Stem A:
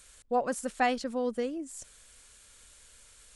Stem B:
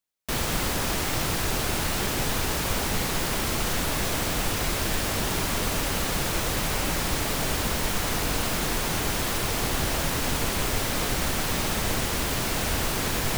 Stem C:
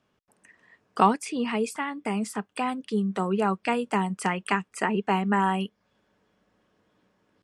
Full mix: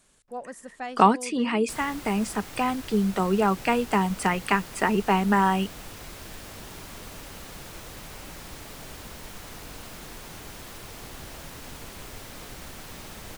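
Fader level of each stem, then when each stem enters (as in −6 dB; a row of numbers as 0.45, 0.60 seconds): −8.5, −15.0, +2.5 decibels; 0.00, 1.40, 0.00 seconds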